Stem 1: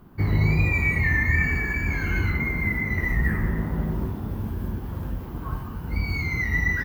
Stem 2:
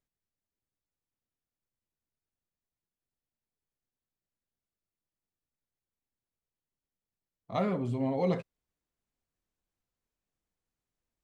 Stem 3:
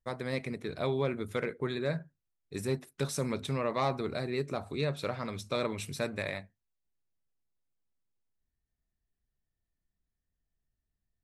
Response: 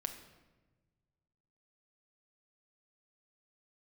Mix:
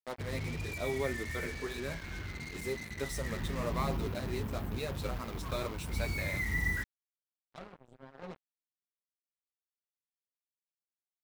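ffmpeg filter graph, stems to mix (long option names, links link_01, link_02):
-filter_complex "[0:a]aeval=exprs='val(0)+0.00794*(sin(2*PI*50*n/s)+sin(2*PI*2*50*n/s)/2+sin(2*PI*3*50*n/s)/3+sin(2*PI*4*50*n/s)/4+sin(2*PI*5*50*n/s)/5)':channel_layout=same,volume=-11dB,afade=type=in:start_time=3.16:duration=0.68:silence=0.334965,asplit=2[link_01][link_02];[link_02]volume=-9dB[link_03];[1:a]volume=-18dB[link_04];[2:a]highpass=240,flanger=delay=7.2:depth=4.4:regen=4:speed=1:shape=sinusoidal,volume=-2dB[link_05];[3:a]atrim=start_sample=2205[link_06];[link_03][link_06]afir=irnorm=-1:irlink=0[link_07];[link_01][link_04][link_05][link_07]amix=inputs=4:normalize=0,acrusher=bits=6:mix=0:aa=0.5"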